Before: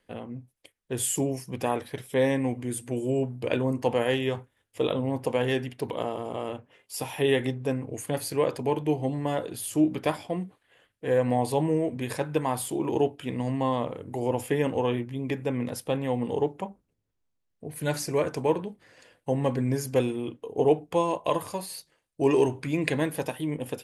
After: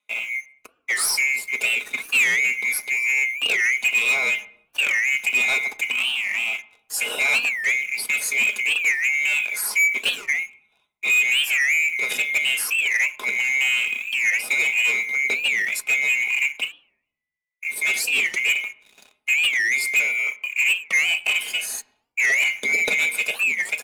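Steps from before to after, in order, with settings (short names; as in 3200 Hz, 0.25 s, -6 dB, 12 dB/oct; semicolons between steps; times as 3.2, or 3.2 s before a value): band-swap scrambler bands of 2000 Hz; HPF 230 Hz 24 dB/oct; notch 1200 Hz, Q 12; comb 4.8 ms, depth 51%; in parallel at -2 dB: compressor, threshold -28 dBFS, peak gain reduction 13.5 dB; on the sum: sample leveller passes 3; on a send at -10 dB: air absorption 250 m + reverb RT60 0.80 s, pre-delay 4 ms; on the sum: record warp 45 rpm, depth 250 cents; gain -7 dB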